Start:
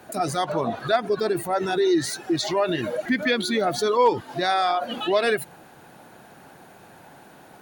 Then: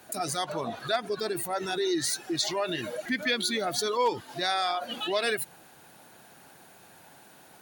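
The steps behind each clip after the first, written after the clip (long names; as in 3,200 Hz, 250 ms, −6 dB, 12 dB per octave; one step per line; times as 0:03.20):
high-shelf EQ 2,300 Hz +11 dB
level −8.5 dB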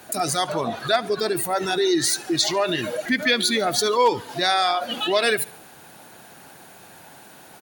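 repeating echo 71 ms, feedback 51%, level −22 dB
level +7.5 dB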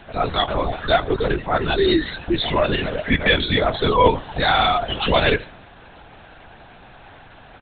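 linear-prediction vocoder at 8 kHz whisper
level +3.5 dB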